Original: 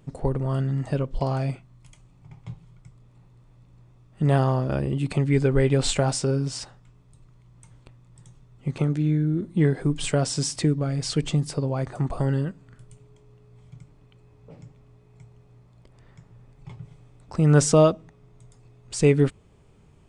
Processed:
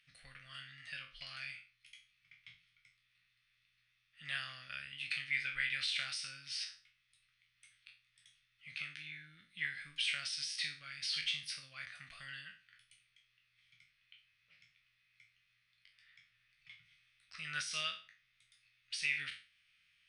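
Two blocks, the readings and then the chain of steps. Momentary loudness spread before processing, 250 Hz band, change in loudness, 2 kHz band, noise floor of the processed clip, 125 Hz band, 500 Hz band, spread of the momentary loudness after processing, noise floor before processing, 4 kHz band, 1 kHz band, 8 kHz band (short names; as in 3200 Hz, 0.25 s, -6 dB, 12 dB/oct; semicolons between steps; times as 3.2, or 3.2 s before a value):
14 LU, under -40 dB, -16.0 dB, -1.0 dB, -78 dBFS, -38.5 dB, under -40 dB, 19 LU, -55 dBFS, -3.5 dB, -21.5 dB, -16.0 dB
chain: spectral trails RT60 0.37 s; inverse Chebyshev high-pass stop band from 980 Hz, stop band 40 dB; limiter -23 dBFS, peak gain reduction 9.5 dB; running mean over 6 samples; gain +3 dB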